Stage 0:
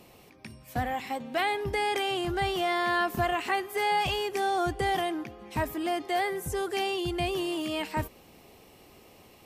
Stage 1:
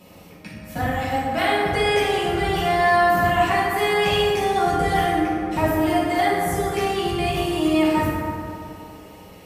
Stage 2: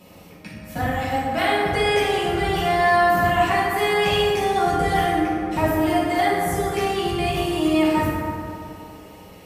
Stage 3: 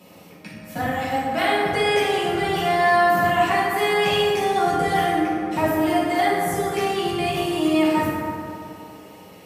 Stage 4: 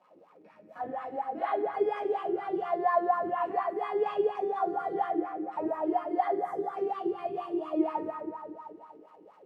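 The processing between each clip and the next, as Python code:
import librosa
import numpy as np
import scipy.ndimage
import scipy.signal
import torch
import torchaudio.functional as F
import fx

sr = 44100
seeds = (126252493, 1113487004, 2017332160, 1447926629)

y1 = fx.rev_fdn(x, sr, rt60_s=2.6, lf_ratio=1.0, hf_ratio=0.4, size_ms=32.0, drr_db=-9.0)
y2 = y1
y3 = scipy.signal.sosfilt(scipy.signal.butter(2, 130.0, 'highpass', fs=sr, output='sos'), y2)
y4 = fx.dmg_crackle(y3, sr, seeds[0], per_s=360.0, level_db=-36.0)
y4 = fx.wah_lfo(y4, sr, hz=4.2, low_hz=340.0, high_hz=1200.0, q=7.0)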